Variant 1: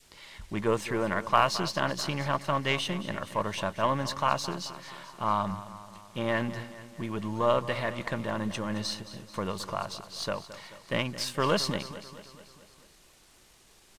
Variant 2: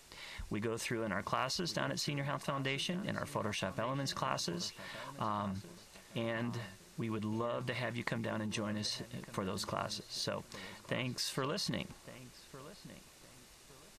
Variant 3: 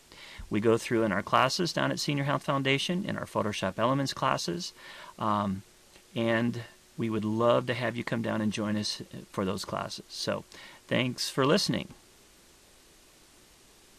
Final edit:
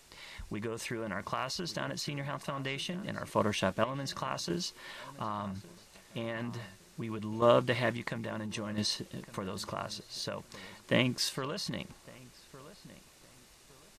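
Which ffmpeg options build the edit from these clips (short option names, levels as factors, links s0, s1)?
-filter_complex "[2:a]asplit=5[s0][s1][s2][s3][s4];[1:a]asplit=6[s5][s6][s7][s8][s9][s10];[s5]atrim=end=3.302[s11];[s0]atrim=start=3.298:end=3.842[s12];[s6]atrim=start=3.838:end=4.502[s13];[s1]atrim=start=4.498:end=5.012[s14];[s7]atrim=start=5.008:end=7.422[s15];[s2]atrim=start=7.418:end=7.972[s16];[s8]atrim=start=7.968:end=8.782[s17];[s3]atrim=start=8.778:end=9.222[s18];[s9]atrim=start=9.218:end=10.842[s19];[s4]atrim=start=10.838:end=11.292[s20];[s10]atrim=start=11.288[s21];[s11][s12]acrossfade=d=0.004:c1=hsin:c2=hsin[s22];[s22][s13]acrossfade=d=0.004:c1=hsin:c2=hsin[s23];[s23][s14]acrossfade=d=0.004:c1=hsin:c2=hsin[s24];[s24][s15]acrossfade=d=0.004:c1=hsin:c2=hsin[s25];[s25][s16]acrossfade=d=0.004:c1=hsin:c2=hsin[s26];[s26][s17]acrossfade=d=0.004:c1=hsin:c2=hsin[s27];[s27][s18]acrossfade=d=0.004:c1=hsin:c2=hsin[s28];[s28][s19]acrossfade=d=0.004:c1=hsin:c2=hsin[s29];[s29][s20]acrossfade=d=0.004:c1=hsin:c2=hsin[s30];[s30][s21]acrossfade=d=0.004:c1=hsin:c2=hsin"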